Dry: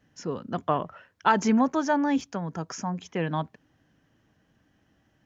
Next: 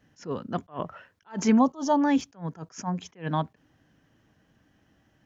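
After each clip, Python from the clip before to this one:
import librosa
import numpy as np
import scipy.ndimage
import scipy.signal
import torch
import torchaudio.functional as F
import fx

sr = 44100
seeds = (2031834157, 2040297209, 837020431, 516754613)

y = fx.spec_box(x, sr, start_s=1.58, length_s=0.44, low_hz=1300.0, high_hz=2800.0, gain_db=-16)
y = fx.attack_slew(y, sr, db_per_s=240.0)
y = F.gain(torch.from_numpy(y), 2.0).numpy()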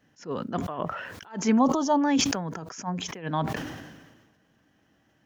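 y = fx.low_shelf(x, sr, hz=99.0, db=-10.5)
y = fx.sustainer(y, sr, db_per_s=42.0)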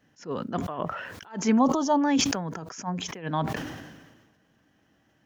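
y = x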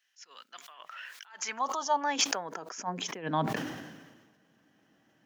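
y = fx.filter_sweep_highpass(x, sr, from_hz=2500.0, to_hz=160.0, start_s=0.91, end_s=3.55, q=0.87)
y = F.gain(torch.from_numpy(y), -1.0).numpy()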